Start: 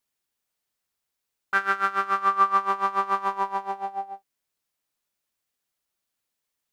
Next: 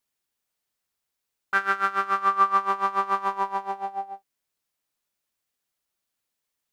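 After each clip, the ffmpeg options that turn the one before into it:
-af anull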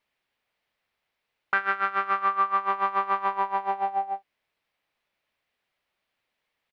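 -af "firequalizer=gain_entry='entry(330,0);entry(560,5);entry(1400,2);entry(2100,7);entry(6800,-15)':delay=0.05:min_phase=1,acompressor=threshold=-29dB:ratio=3,volume=4.5dB"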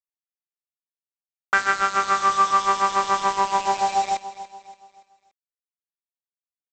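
-af "aresample=16000,acrusher=bits=5:mix=0:aa=0.000001,aresample=44100,aecho=1:1:286|572|858|1144:0.178|0.0765|0.0329|0.0141,volume=5dB"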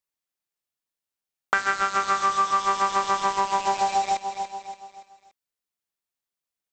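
-af "acompressor=threshold=-29dB:ratio=3,volume=6.5dB"

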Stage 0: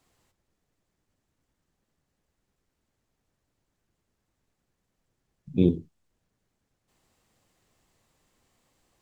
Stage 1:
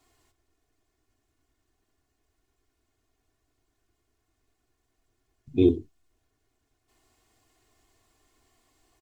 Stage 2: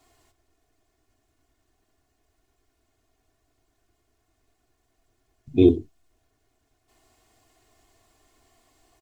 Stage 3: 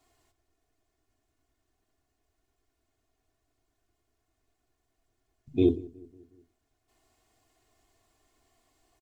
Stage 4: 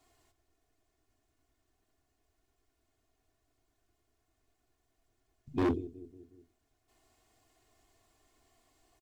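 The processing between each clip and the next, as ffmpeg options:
-af "aecho=1:1:2.8:0.91"
-af "equalizer=f=670:w=4.7:g=5.5,volume=4dB"
-filter_complex "[0:a]asplit=2[a][b];[b]adelay=182,lowpass=f=1.1k:p=1,volume=-22dB,asplit=2[c][d];[d]adelay=182,lowpass=f=1.1k:p=1,volume=0.55,asplit=2[e][f];[f]adelay=182,lowpass=f=1.1k:p=1,volume=0.55,asplit=2[g][h];[h]adelay=182,lowpass=f=1.1k:p=1,volume=0.55[i];[a][c][e][g][i]amix=inputs=5:normalize=0,volume=-7dB"
-af "asoftclip=type=hard:threshold=-25dB"

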